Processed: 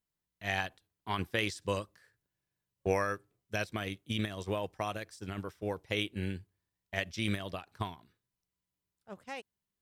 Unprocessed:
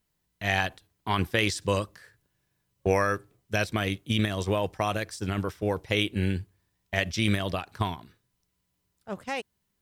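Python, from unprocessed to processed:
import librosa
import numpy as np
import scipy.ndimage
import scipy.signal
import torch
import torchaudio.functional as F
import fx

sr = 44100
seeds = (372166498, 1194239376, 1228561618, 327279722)

y = fx.low_shelf(x, sr, hz=140.0, db=-3.0)
y = fx.upward_expand(y, sr, threshold_db=-35.0, expansion=1.5)
y = y * librosa.db_to_amplitude(-5.0)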